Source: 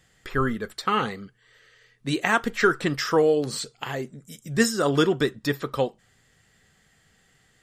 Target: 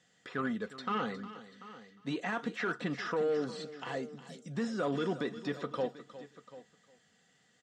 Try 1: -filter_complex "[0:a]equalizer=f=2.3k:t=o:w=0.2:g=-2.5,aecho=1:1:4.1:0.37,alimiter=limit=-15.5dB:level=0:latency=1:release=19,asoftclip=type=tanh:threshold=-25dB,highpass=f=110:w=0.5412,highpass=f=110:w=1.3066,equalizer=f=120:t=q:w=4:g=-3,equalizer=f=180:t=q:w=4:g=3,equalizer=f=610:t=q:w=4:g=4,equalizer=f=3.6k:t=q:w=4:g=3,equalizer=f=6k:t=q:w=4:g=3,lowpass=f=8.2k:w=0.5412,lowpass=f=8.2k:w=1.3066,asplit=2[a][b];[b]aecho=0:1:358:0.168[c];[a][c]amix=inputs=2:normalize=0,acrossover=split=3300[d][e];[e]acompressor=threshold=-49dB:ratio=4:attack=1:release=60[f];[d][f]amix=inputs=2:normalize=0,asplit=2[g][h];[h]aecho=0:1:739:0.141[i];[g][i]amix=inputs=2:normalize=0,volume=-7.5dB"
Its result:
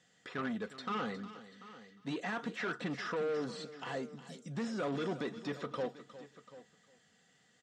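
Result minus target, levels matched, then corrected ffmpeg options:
soft clip: distortion +8 dB
-filter_complex "[0:a]equalizer=f=2.3k:t=o:w=0.2:g=-2.5,aecho=1:1:4.1:0.37,alimiter=limit=-15.5dB:level=0:latency=1:release=19,asoftclip=type=tanh:threshold=-18dB,highpass=f=110:w=0.5412,highpass=f=110:w=1.3066,equalizer=f=120:t=q:w=4:g=-3,equalizer=f=180:t=q:w=4:g=3,equalizer=f=610:t=q:w=4:g=4,equalizer=f=3.6k:t=q:w=4:g=3,equalizer=f=6k:t=q:w=4:g=3,lowpass=f=8.2k:w=0.5412,lowpass=f=8.2k:w=1.3066,asplit=2[a][b];[b]aecho=0:1:358:0.168[c];[a][c]amix=inputs=2:normalize=0,acrossover=split=3300[d][e];[e]acompressor=threshold=-49dB:ratio=4:attack=1:release=60[f];[d][f]amix=inputs=2:normalize=0,asplit=2[g][h];[h]aecho=0:1:739:0.141[i];[g][i]amix=inputs=2:normalize=0,volume=-7.5dB"

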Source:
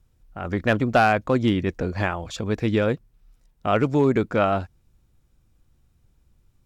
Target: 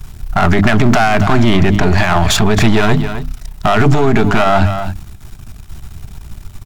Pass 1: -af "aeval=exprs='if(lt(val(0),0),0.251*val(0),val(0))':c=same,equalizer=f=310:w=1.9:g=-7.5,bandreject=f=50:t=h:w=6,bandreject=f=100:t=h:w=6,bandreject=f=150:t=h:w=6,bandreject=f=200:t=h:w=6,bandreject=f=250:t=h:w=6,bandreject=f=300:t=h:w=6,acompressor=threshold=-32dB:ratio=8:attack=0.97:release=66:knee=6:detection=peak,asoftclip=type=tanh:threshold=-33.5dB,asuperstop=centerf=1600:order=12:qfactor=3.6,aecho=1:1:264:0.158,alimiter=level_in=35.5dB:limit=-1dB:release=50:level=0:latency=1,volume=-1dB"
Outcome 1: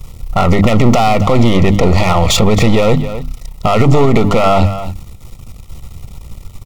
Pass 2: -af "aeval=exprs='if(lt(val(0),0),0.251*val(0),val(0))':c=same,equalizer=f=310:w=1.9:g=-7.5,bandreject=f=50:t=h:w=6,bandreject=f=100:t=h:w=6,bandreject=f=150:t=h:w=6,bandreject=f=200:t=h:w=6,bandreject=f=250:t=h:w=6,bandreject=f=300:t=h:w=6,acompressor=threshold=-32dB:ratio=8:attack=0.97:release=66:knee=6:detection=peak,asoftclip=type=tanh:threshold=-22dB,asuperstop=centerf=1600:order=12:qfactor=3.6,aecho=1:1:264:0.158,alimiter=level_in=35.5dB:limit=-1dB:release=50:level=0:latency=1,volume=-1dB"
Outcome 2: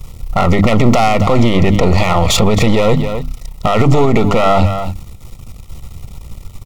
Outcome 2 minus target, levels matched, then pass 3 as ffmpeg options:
2000 Hz band -5.5 dB
-af "aeval=exprs='if(lt(val(0),0),0.251*val(0),val(0))':c=same,equalizer=f=310:w=1.9:g=-7.5,bandreject=f=50:t=h:w=6,bandreject=f=100:t=h:w=6,bandreject=f=150:t=h:w=6,bandreject=f=200:t=h:w=6,bandreject=f=250:t=h:w=6,bandreject=f=300:t=h:w=6,acompressor=threshold=-32dB:ratio=8:attack=0.97:release=66:knee=6:detection=peak,asoftclip=type=tanh:threshold=-22dB,asuperstop=centerf=510:order=12:qfactor=3.6,aecho=1:1:264:0.158,alimiter=level_in=35.5dB:limit=-1dB:release=50:level=0:latency=1,volume=-1dB"

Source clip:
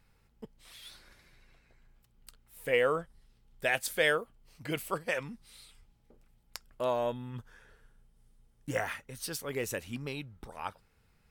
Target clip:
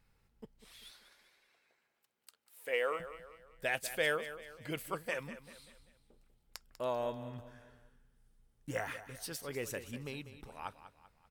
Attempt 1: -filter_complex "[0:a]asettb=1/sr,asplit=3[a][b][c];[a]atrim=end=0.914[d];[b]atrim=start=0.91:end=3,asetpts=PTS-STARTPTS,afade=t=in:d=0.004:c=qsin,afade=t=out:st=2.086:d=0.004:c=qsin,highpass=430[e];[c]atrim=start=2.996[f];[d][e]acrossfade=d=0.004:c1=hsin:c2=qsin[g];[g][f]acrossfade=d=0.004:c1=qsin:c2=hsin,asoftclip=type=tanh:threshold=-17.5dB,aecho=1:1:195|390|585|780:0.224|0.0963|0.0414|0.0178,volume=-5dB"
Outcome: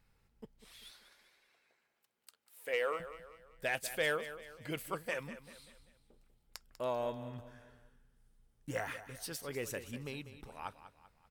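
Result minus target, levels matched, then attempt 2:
soft clip: distortion +13 dB
-filter_complex "[0:a]asettb=1/sr,asplit=3[a][b][c];[a]atrim=end=0.914[d];[b]atrim=start=0.91:end=3,asetpts=PTS-STARTPTS,afade=t=in:d=0.004:c=qsin,afade=t=out:st=2.086:d=0.004:c=qsin,highpass=430[e];[c]atrim=start=2.996[f];[d][e]acrossfade=d=0.004:c1=hsin:c2=qsin[g];[g][f]acrossfade=d=0.004:c1=qsin:c2=hsin,asoftclip=type=tanh:threshold=-10dB,aecho=1:1:195|390|585|780:0.224|0.0963|0.0414|0.0178,volume=-5dB"

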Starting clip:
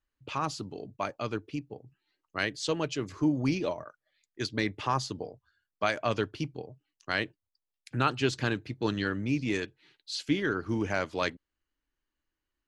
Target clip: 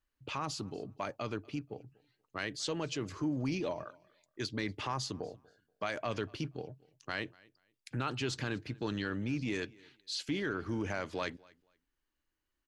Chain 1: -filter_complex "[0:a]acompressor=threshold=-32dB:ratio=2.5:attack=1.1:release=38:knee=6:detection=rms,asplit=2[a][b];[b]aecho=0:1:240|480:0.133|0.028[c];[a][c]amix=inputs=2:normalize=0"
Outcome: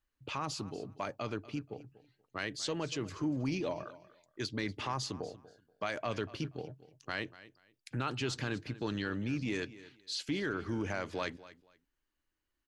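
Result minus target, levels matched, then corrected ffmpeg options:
echo-to-direct +7.5 dB
-filter_complex "[0:a]acompressor=threshold=-32dB:ratio=2.5:attack=1.1:release=38:knee=6:detection=rms,asplit=2[a][b];[b]aecho=0:1:240|480:0.0562|0.0118[c];[a][c]amix=inputs=2:normalize=0"

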